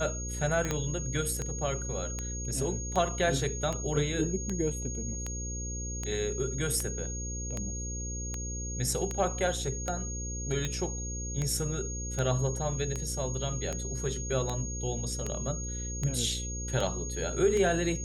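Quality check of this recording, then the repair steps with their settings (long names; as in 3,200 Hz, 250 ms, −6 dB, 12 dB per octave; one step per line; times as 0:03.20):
mains buzz 60 Hz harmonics 9 −37 dBFS
scratch tick 78 rpm −19 dBFS
whistle 6,600 Hz −38 dBFS
0:00.71: click −15 dBFS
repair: click removal
notch filter 6,600 Hz, Q 30
hum removal 60 Hz, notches 9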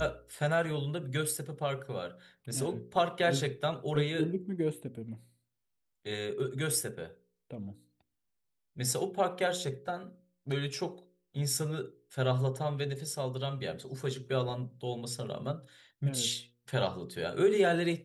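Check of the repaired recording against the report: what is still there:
0:00.71: click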